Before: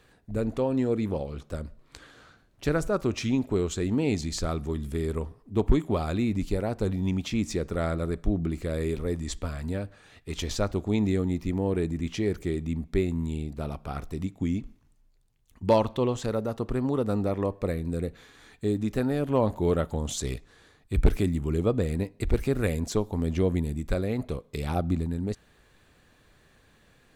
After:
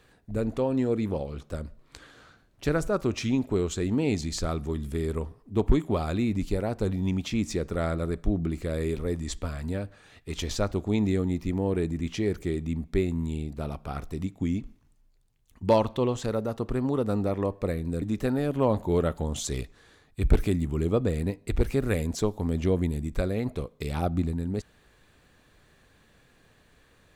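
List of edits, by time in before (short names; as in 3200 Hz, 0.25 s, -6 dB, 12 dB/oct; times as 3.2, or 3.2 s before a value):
18.02–18.75 cut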